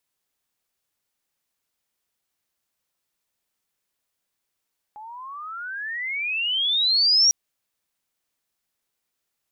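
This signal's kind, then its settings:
pitch glide with a swell sine, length 2.35 s, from 831 Hz, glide +33.5 semitones, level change +24 dB, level −13 dB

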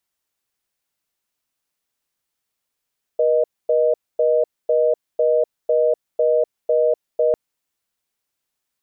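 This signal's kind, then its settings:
call progress tone reorder tone, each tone −16.5 dBFS 4.15 s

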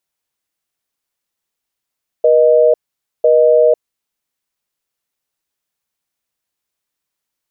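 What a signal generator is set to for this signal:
call progress tone busy tone, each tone −9.5 dBFS 1.60 s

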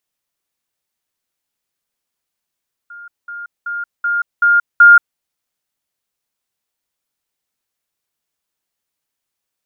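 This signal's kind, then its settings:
level staircase 1,410 Hz −32 dBFS, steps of 6 dB, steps 6, 0.18 s 0.20 s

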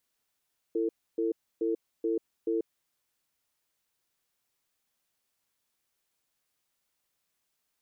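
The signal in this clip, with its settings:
tone pair in a cadence 334 Hz, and 450 Hz, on 0.14 s, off 0.29 s, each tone −28.5 dBFS 2.00 s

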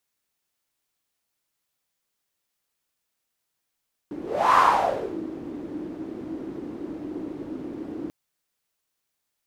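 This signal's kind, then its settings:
pass-by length 3.99 s, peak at 0:00.45, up 0.38 s, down 0.72 s, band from 310 Hz, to 1,100 Hz, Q 7, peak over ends 17.5 dB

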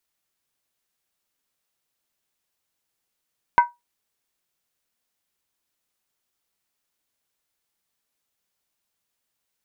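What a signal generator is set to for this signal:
struck skin, lowest mode 961 Hz, decay 0.19 s, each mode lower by 9 dB, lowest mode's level −7 dB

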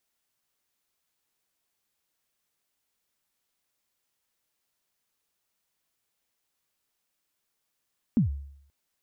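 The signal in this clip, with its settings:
synth kick length 0.53 s, from 260 Hz, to 70 Hz, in 122 ms, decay 0.69 s, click off, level −16 dB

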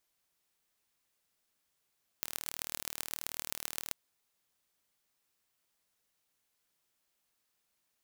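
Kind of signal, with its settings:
impulse train 38.6 per second, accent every 5, −6.5 dBFS 1.69 s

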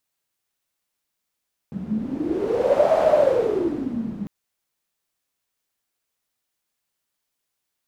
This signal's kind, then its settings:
wind from filtered noise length 2.55 s, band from 200 Hz, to 630 Hz, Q 12, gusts 1, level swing 11.5 dB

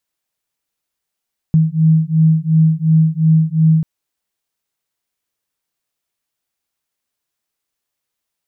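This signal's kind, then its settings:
two tones that beat 158 Hz, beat 2.8 Hz, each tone −12.5 dBFS 2.29 s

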